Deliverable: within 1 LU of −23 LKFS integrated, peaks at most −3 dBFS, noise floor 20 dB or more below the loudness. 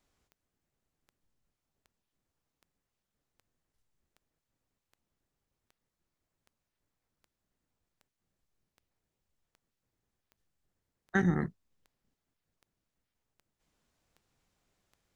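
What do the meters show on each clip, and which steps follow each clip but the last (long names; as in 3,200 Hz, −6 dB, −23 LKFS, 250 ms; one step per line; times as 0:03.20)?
number of clicks 20; integrated loudness −31.5 LKFS; sample peak −14.5 dBFS; target loudness −23.0 LKFS
→ click removal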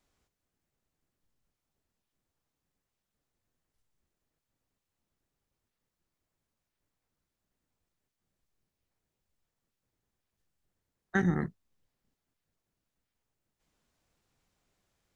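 number of clicks 0; integrated loudness −31.5 LKFS; sample peak −14.5 dBFS; target loudness −23.0 LKFS
→ level +8.5 dB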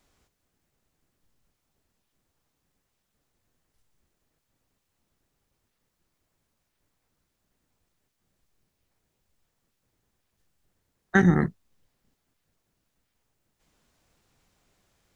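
integrated loudness −23.0 LKFS; sample peak −6.0 dBFS; background noise floor −79 dBFS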